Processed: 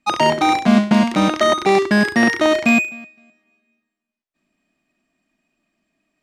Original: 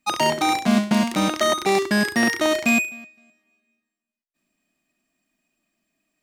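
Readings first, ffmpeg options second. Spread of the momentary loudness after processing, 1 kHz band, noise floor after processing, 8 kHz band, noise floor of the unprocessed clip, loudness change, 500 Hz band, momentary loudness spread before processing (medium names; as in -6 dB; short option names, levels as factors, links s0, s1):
3 LU, +5.0 dB, -83 dBFS, -3.0 dB, under -85 dBFS, +4.5 dB, +5.5 dB, 3 LU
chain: -af "aemphasis=mode=reproduction:type=50fm,volume=1.78"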